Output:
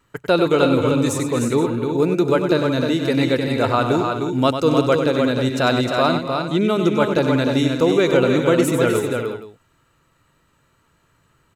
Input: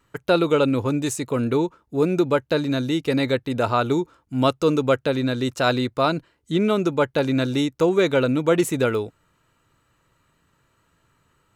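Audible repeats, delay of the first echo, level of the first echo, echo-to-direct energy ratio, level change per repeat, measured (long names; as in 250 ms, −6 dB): 5, 97 ms, −8.5 dB, −2.0 dB, repeats not evenly spaced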